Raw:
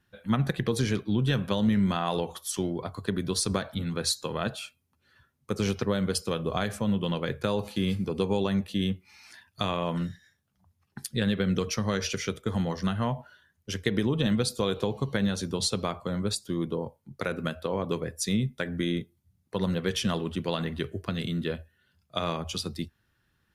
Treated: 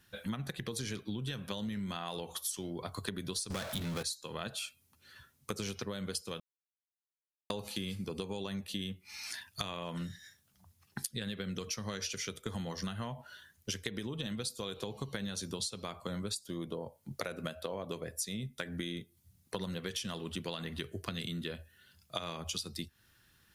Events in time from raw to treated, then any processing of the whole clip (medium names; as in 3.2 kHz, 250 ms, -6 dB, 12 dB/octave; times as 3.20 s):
3.50–4.03 s: power-law waveshaper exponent 0.5
6.40–7.50 s: mute
16.40–18.47 s: peaking EQ 630 Hz +7 dB 0.53 oct
whole clip: treble shelf 2.7 kHz +11.5 dB; compression 12:1, threshold -37 dBFS; trim +2 dB